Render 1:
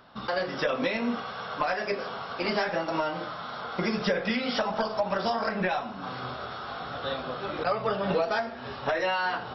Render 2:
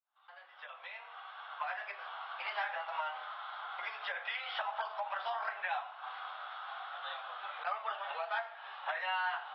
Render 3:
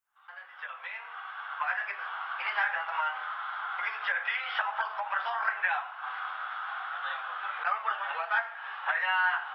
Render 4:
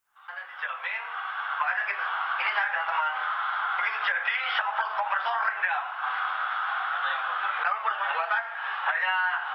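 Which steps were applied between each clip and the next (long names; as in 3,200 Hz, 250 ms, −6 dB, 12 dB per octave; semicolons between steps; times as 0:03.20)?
fade in at the beginning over 2.31 s; elliptic band-pass filter 770–3,400 Hz, stop band 50 dB; level −5.5 dB
graphic EQ with 15 bands 250 Hz −7 dB, 630 Hz −8 dB, 1,600 Hz +5 dB, 4,000 Hz −9 dB; level +7 dB
downward compressor, threshold −31 dBFS, peak gain reduction 8.5 dB; level +8 dB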